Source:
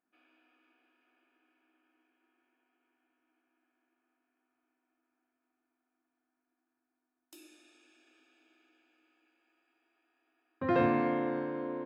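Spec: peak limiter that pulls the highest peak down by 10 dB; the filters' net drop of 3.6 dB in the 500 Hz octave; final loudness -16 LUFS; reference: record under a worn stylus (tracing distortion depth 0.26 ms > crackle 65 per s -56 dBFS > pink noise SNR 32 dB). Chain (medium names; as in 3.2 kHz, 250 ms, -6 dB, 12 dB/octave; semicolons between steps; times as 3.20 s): peaking EQ 500 Hz -5 dB; peak limiter -28 dBFS; tracing distortion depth 0.26 ms; crackle 65 per s -56 dBFS; pink noise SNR 32 dB; trim +21.5 dB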